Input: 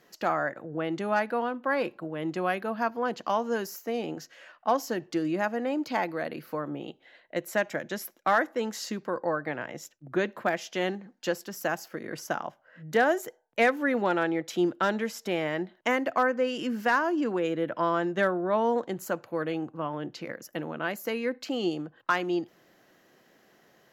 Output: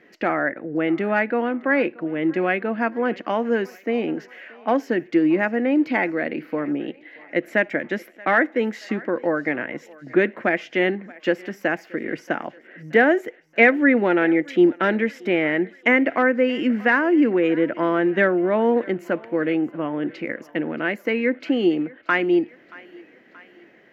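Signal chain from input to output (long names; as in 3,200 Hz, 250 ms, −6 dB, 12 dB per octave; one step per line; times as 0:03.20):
drawn EQ curve 140 Hz 0 dB, 280 Hz +11 dB, 1,100 Hz −2 dB, 2,100 Hz +12 dB, 3,900 Hz −5 dB, 6,900 Hz −13 dB, 11,000 Hz −16 dB
on a send: feedback echo with a high-pass in the loop 628 ms, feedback 62%, high-pass 420 Hz, level −21.5 dB
on the sum: level +1.5 dB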